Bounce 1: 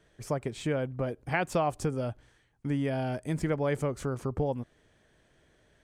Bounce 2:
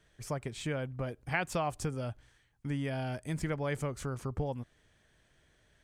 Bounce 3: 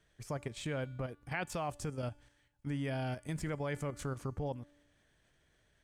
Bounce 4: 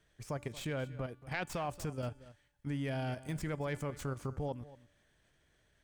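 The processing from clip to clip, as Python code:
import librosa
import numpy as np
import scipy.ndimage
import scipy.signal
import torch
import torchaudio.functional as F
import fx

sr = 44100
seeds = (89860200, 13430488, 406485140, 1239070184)

y1 = fx.peak_eq(x, sr, hz=400.0, db=-7.0, octaves=2.7)
y2 = fx.level_steps(y1, sr, step_db=9)
y2 = fx.comb_fb(y2, sr, f0_hz=290.0, decay_s=1.1, harmonics='all', damping=0.0, mix_pct=50)
y2 = y2 * librosa.db_to_amplitude(6.0)
y3 = fx.tracing_dist(y2, sr, depth_ms=0.041)
y3 = y3 + 10.0 ** (-17.5 / 20.0) * np.pad(y3, (int(229 * sr / 1000.0), 0))[:len(y3)]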